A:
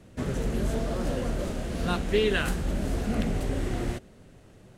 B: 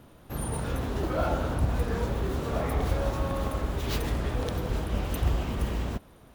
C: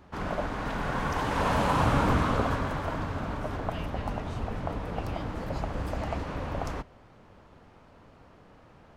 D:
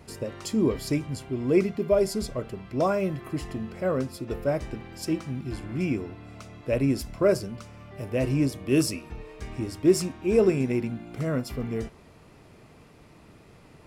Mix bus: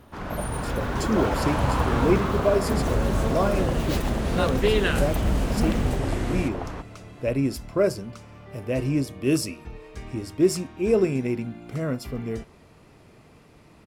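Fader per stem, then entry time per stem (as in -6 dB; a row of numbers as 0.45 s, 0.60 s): +2.0 dB, 0.0 dB, -1.0 dB, 0.0 dB; 2.50 s, 0.00 s, 0.00 s, 0.55 s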